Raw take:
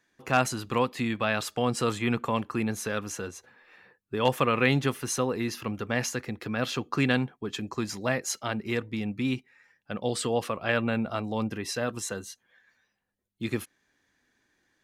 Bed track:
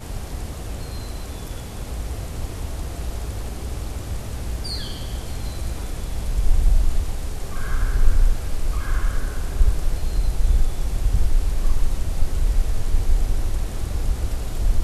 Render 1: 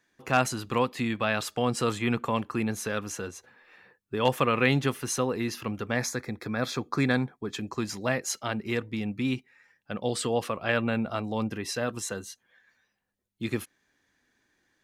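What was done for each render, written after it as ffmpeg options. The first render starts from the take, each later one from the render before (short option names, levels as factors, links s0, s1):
-filter_complex "[0:a]asettb=1/sr,asplit=3[s0][s1][s2];[s0]atrim=end=5.964[s3];[s1]atrim=start=5.96:end=7.55,asetpts=PTS-STARTPTS,afade=t=in:d=0.004:c=qsin,afade=t=out:st=1.586:d=0.004:c=qsin,asuperstop=centerf=2900:order=4:qfactor=3.6[s4];[s2]atrim=start=7.546[s5];[s3][s4]acrossfade=d=0.004:c1=hsin:c2=qsin[s6];[s6][s5]acrossfade=d=0.004:c1=qsin:c2=hsin"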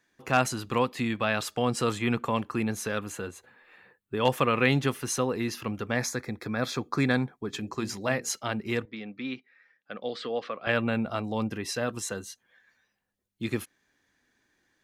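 -filter_complex "[0:a]asettb=1/sr,asplit=3[s0][s1][s2];[s0]atrim=end=2.994[s3];[s1]atrim=start=2.99:end=4.19,asetpts=PTS-STARTPTS,afade=t=in:d=0.004:c=qsin,afade=t=out:st=1.196:d=0.004:c=qsin,equalizer=f=5600:t=o:w=0.27:g=-14.5[s4];[s2]atrim=start=4.186[s5];[s3][s4]acrossfade=d=0.004:c1=hsin:c2=qsin[s6];[s6][s5]acrossfade=d=0.004:c1=qsin:c2=hsin,asplit=3[s7][s8][s9];[s7]afade=t=out:st=7.52:d=0.02[s10];[s8]bandreject=f=60:t=h:w=6,bandreject=f=120:t=h:w=6,bandreject=f=180:t=h:w=6,bandreject=f=240:t=h:w=6,bandreject=f=300:t=h:w=6,bandreject=f=360:t=h:w=6,bandreject=f=420:t=h:w=6,bandreject=f=480:t=h:w=6,afade=t=in:st=7.52:d=0.02,afade=t=out:st=8.3:d=0.02[s11];[s9]afade=t=in:st=8.3:d=0.02[s12];[s10][s11][s12]amix=inputs=3:normalize=0,asettb=1/sr,asplit=3[s13][s14][s15];[s13]atrim=end=8.854[s16];[s14]atrim=start=8.85:end=10.67,asetpts=PTS-STARTPTS,afade=t=in:d=0.004:c=qsin,afade=t=out:st=1.816:d=0.004:c=qsin,highpass=330,equalizer=f=360:t=q:w=4:g=-6,equalizer=f=640:t=q:w=4:g=-3,equalizer=f=910:t=q:w=4:g=-10,equalizer=f=2800:t=q:w=4:g=-6,lowpass=f=4100:w=0.5412,lowpass=f=4100:w=1.3066[s17];[s15]atrim=start=10.666[s18];[s16][s17]acrossfade=d=0.004:c1=hsin:c2=qsin[s19];[s19][s18]acrossfade=d=0.004:c1=qsin:c2=hsin"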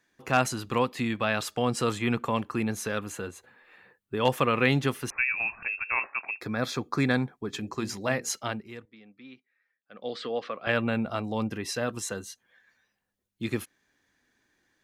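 -filter_complex "[0:a]asettb=1/sr,asplit=3[s0][s1][s2];[s0]atrim=end=5.104[s3];[s1]atrim=start=5.1:end=6.41,asetpts=PTS-STARTPTS,afade=t=in:d=0.004:c=qsin,afade=t=out:st=1.306:d=0.004:c=qsin,lowpass=f=2400:t=q:w=0.5098,lowpass=f=2400:t=q:w=0.6013,lowpass=f=2400:t=q:w=0.9,lowpass=f=2400:t=q:w=2.563,afreqshift=-2800[s4];[s2]atrim=start=6.406[s5];[s3][s4]acrossfade=d=0.004:c1=hsin:c2=qsin[s6];[s6][s5]acrossfade=d=0.004:c1=qsin:c2=hsin,asplit=3[s7][s8][s9];[s7]atrim=end=8.68,asetpts=PTS-STARTPTS,afade=t=out:st=8.47:d=0.21:silence=0.211349[s10];[s8]atrim=start=8.68:end=9.9,asetpts=PTS-STARTPTS,volume=0.211[s11];[s9]atrim=start=9.9,asetpts=PTS-STARTPTS,afade=t=in:d=0.21:silence=0.211349[s12];[s10][s11][s12]concat=n=3:v=0:a=1"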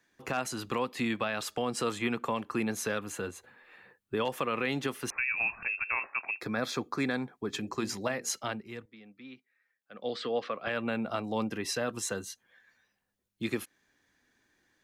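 -filter_complex "[0:a]acrossover=split=190|4400[s0][s1][s2];[s0]acompressor=threshold=0.00631:ratio=6[s3];[s3][s1][s2]amix=inputs=3:normalize=0,alimiter=limit=0.1:level=0:latency=1:release=216"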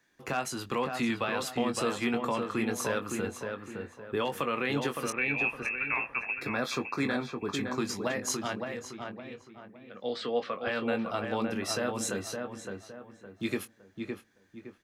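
-filter_complex "[0:a]asplit=2[s0][s1];[s1]adelay=21,volume=0.376[s2];[s0][s2]amix=inputs=2:normalize=0,asplit=2[s3][s4];[s4]adelay=563,lowpass=f=2100:p=1,volume=0.596,asplit=2[s5][s6];[s6]adelay=563,lowpass=f=2100:p=1,volume=0.36,asplit=2[s7][s8];[s8]adelay=563,lowpass=f=2100:p=1,volume=0.36,asplit=2[s9][s10];[s10]adelay=563,lowpass=f=2100:p=1,volume=0.36,asplit=2[s11][s12];[s12]adelay=563,lowpass=f=2100:p=1,volume=0.36[s13];[s5][s7][s9][s11][s13]amix=inputs=5:normalize=0[s14];[s3][s14]amix=inputs=2:normalize=0"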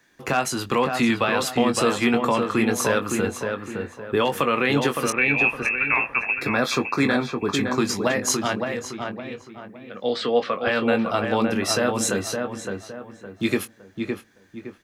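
-af "volume=2.99"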